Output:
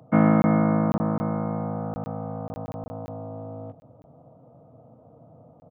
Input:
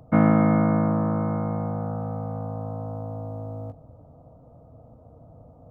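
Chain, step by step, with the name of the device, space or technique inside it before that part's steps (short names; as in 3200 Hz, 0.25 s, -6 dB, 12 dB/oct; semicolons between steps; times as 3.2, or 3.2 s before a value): call with lost packets (HPF 120 Hz 24 dB/oct; downsampling 8000 Hz; packet loss packets of 20 ms random)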